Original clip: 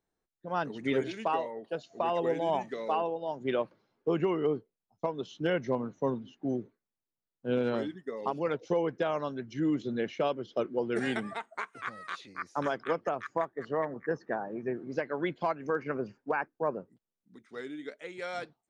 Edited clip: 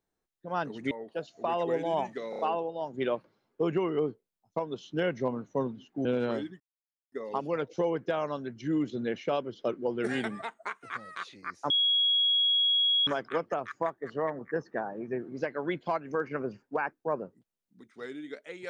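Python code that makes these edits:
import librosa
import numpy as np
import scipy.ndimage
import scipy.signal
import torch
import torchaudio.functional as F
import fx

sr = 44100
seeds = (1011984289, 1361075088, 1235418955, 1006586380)

y = fx.edit(x, sr, fx.cut(start_s=0.91, length_s=0.56),
    fx.stutter(start_s=2.86, slice_s=0.03, count=4),
    fx.cut(start_s=6.52, length_s=0.97),
    fx.insert_silence(at_s=8.04, length_s=0.52),
    fx.insert_tone(at_s=12.62, length_s=1.37, hz=3320.0, db=-22.0), tone=tone)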